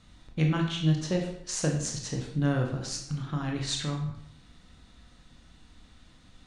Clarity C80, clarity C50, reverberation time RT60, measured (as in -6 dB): 8.5 dB, 6.0 dB, 0.75 s